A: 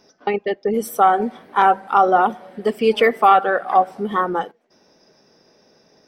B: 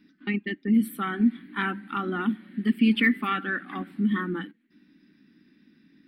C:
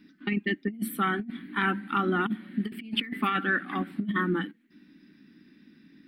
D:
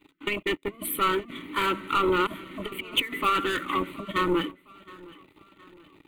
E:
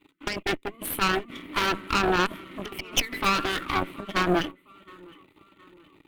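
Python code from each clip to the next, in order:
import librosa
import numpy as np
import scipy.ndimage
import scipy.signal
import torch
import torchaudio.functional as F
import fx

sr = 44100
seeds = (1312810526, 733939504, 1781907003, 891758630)

y1 = fx.curve_eq(x, sr, hz=(130.0, 200.0, 300.0, 440.0, 680.0, 1800.0, 4200.0, 6100.0, 9200.0), db=(0, 10, 13, -18, -26, 5, 0, -25, -3))
y1 = y1 * librosa.db_to_amplitude(-6.0)
y2 = fx.over_compress(y1, sr, threshold_db=-27.0, ratio=-0.5)
y3 = fx.leveller(y2, sr, passes=3)
y3 = fx.fixed_phaser(y3, sr, hz=1100.0, stages=8)
y3 = fx.echo_feedback(y3, sr, ms=716, feedback_pct=46, wet_db=-22.0)
y4 = fx.cheby_harmonics(y3, sr, harmonics=(4,), levels_db=(-7,), full_scale_db=-12.5)
y4 = y4 * librosa.db_to_amplitude(-1.5)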